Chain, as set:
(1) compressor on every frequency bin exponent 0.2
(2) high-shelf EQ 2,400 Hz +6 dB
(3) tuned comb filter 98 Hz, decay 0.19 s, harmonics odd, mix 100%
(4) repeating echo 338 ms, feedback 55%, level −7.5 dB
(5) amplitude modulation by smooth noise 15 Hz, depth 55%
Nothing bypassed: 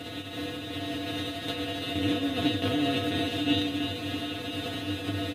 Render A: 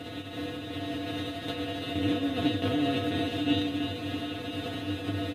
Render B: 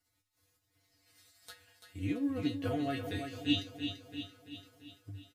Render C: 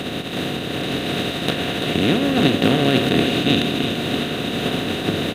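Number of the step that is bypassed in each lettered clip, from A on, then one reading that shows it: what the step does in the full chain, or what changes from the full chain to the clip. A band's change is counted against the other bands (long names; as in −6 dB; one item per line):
2, 4 kHz band −3.5 dB
1, 125 Hz band +3.0 dB
3, 4 kHz band −1.5 dB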